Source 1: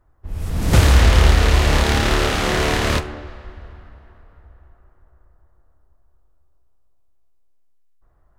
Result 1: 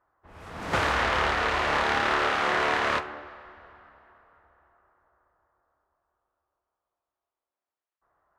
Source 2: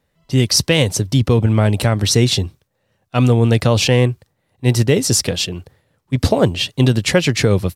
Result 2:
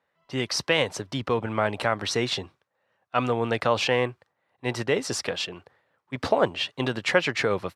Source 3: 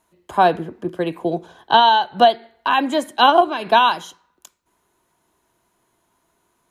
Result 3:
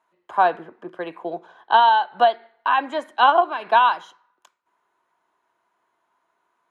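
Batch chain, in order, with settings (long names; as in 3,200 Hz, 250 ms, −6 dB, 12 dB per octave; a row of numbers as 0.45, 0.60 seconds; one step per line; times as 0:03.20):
resonant band-pass 1,200 Hz, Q 1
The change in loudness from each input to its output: −8.0, −10.5, −1.5 LU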